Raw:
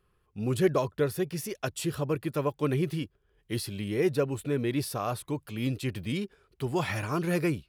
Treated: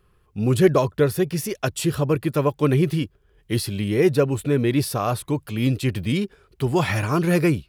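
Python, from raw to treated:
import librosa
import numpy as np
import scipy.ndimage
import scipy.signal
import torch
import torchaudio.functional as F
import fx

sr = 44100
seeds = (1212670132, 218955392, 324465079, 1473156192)

y = fx.low_shelf(x, sr, hz=190.0, db=3.5)
y = y * 10.0 ** (7.5 / 20.0)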